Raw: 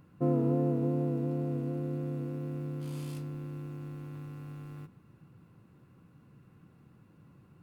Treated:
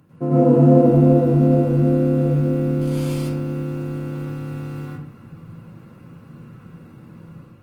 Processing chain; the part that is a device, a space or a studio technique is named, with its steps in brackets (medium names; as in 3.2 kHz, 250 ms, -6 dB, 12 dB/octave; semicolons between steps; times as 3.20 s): far-field microphone of a smart speaker (reverberation RT60 0.50 s, pre-delay 91 ms, DRR -6.5 dB; high-pass 89 Hz 24 dB/octave; level rider gain up to 5 dB; trim +4.5 dB; Opus 24 kbps 48 kHz)